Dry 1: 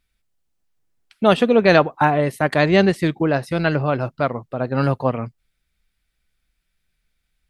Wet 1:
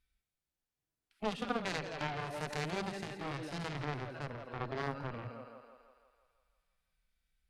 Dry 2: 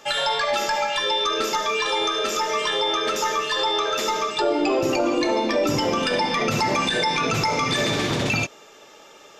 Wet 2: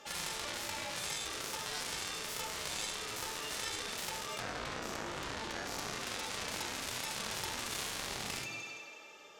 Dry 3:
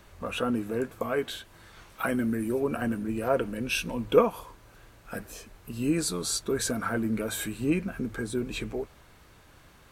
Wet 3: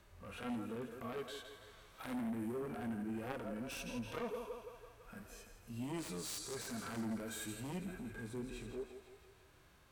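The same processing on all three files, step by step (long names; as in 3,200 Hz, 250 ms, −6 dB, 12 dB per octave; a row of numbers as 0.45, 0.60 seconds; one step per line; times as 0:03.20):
feedback echo with a high-pass in the loop 166 ms, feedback 61%, high-pass 310 Hz, level −10.5 dB
downward compressor 5 to 1, threshold −21 dBFS
dynamic equaliser 6,500 Hz, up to +5 dB, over −45 dBFS, Q 0.92
harmonic generator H 3 −15 dB, 7 −16 dB, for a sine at −9 dBFS
harmonic and percussive parts rebalanced percussive −16 dB
level −2.5 dB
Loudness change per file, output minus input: −21.0, −16.5, −14.5 LU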